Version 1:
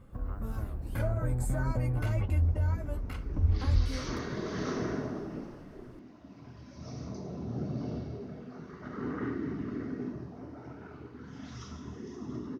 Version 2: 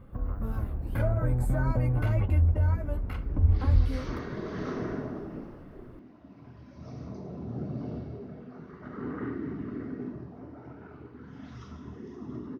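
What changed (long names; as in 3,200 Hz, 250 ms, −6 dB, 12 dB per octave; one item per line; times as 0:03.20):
first sound +4.0 dB
master: add parametric band 7,100 Hz −12.5 dB 1.6 octaves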